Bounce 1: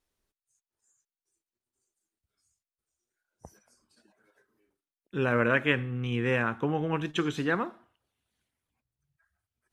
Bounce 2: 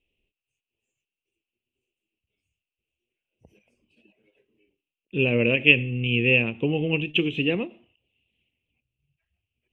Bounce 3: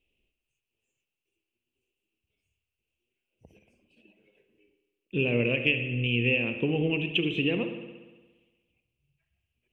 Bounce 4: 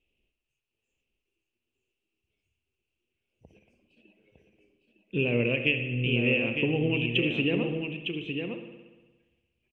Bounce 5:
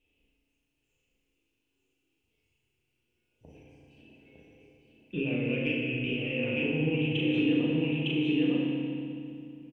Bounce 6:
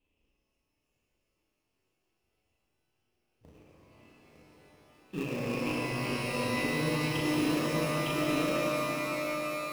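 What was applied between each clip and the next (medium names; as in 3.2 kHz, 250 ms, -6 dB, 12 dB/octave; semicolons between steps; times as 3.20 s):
FFT filter 490 Hz 0 dB, 1.5 kHz -26 dB, 2.7 kHz +15 dB, 4.5 kHz -21 dB; endings held to a fixed fall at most 260 dB/s; trim +5 dB
compression 3:1, threshold -24 dBFS, peak gain reduction 11 dB; reverberation RT60 1.3 s, pre-delay 58 ms, DRR 7.5 dB
distance through air 52 m; delay 907 ms -6 dB
compression 12:1, threshold -32 dBFS, peak gain reduction 13.5 dB; doubling 37 ms -5 dB; FDN reverb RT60 2.5 s, low-frequency decay 1.35×, high-frequency decay 0.85×, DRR -2 dB
in parallel at -5 dB: sample-rate reducer 1.5 kHz, jitter 20%; on the sum: pitch-shifted reverb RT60 3.7 s, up +12 st, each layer -2 dB, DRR 4 dB; trim -6.5 dB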